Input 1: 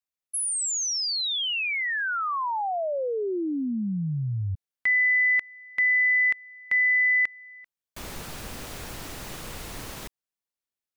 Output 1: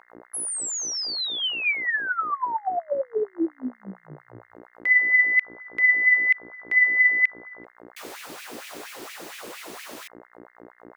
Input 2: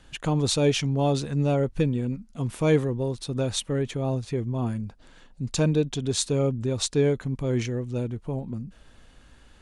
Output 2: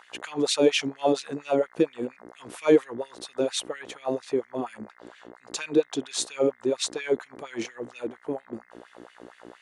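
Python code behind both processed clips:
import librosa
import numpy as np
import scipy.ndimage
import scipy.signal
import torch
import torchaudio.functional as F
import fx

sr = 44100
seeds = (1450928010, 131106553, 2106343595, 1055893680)

y = fx.dmg_buzz(x, sr, base_hz=60.0, harmonics=35, level_db=-38.0, tilt_db=-7, odd_only=False)
y = fx.filter_lfo_highpass(y, sr, shape='sine', hz=4.3, low_hz=300.0, high_hz=2400.0, q=2.9)
y = y * librosa.db_to_amplitude(-2.0)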